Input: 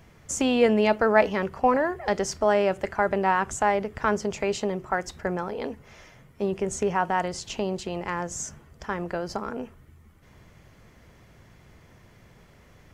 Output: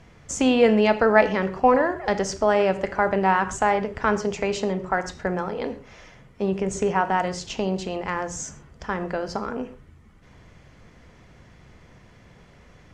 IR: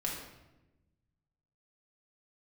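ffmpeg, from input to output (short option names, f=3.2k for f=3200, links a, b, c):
-filter_complex "[0:a]lowpass=7.3k,asplit=2[a][b];[1:a]atrim=start_sample=2205,atrim=end_sample=6174[c];[b][c]afir=irnorm=-1:irlink=0,volume=-8.5dB[d];[a][d]amix=inputs=2:normalize=0"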